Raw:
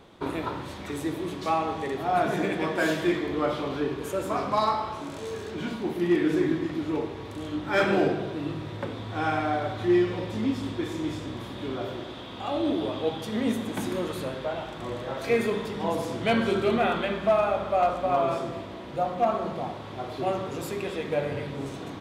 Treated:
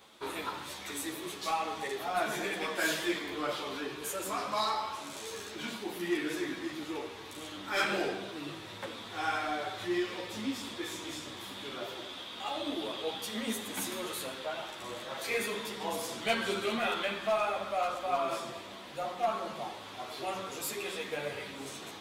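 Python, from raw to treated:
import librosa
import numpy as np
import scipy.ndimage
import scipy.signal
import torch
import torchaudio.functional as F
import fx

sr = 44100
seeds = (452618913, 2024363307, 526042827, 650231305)

p1 = fx.tilt_eq(x, sr, slope=3.5)
p2 = 10.0 ** (-26.0 / 20.0) * np.tanh(p1 / 10.0 ** (-26.0 / 20.0))
p3 = p1 + (p2 * librosa.db_to_amplitude(-5.5))
p4 = fx.ensemble(p3, sr)
y = p4 * librosa.db_to_amplitude(-5.0)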